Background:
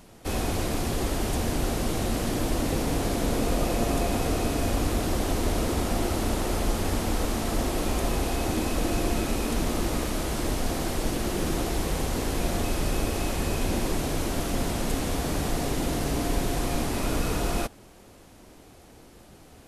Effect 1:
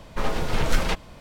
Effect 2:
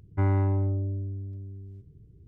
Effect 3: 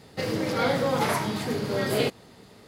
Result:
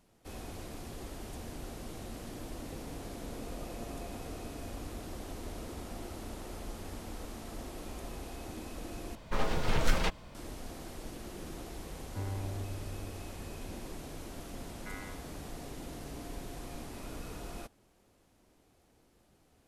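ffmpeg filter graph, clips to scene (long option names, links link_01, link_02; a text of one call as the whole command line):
ffmpeg -i bed.wav -i cue0.wav -i cue1.wav -filter_complex "[2:a]asplit=2[link_01][link_02];[0:a]volume=-16.5dB[link_03];[link_01]equalizer=frequency=330:width=1.5:gain=-3.5[link_04];[link_02]highpass=frequency=1500:width=0.5412,highpass=frequency=1500:width=1.3066[link_05];[link_03]asplit=2[link_06][link_07];[link_06]atrim=end=9.154[link_08];[1:a]atrim=end=1.2,asetpts=PTS-STARTPTS,volume=-5.5dB[link_09];[link_07]atrim=start=10.346[link_10];[link_04]atrim=end=2.27,asetpts=PTS-STARTPTS,volume=-14dB,afade=type=in:duration=0.004:curve=hsin,afade=type=out:start_time=2.266:duration=0.004:curve=hsin,adelay=11980[link_11];[link_05]atrim=end=2.27,asetpts=PTS-STARTPTS,volume=-1dB,afade=type=in:duration=0.004:curve=hsin,afade=type=out:start_time=2.266:duration=0.004:curve=hsin,adelay=14680[link_12];[link_08][link_09]acrossfade=duration=0.004:curve1=hsin:curve2=hsin[link_13];[link_13][link_10]acrossfade=duration=0.004:curve1=hsin:curve2=hsin[link_14];[link_14][link_11][link_12]amix=inputs=3:normalize=0" out.wav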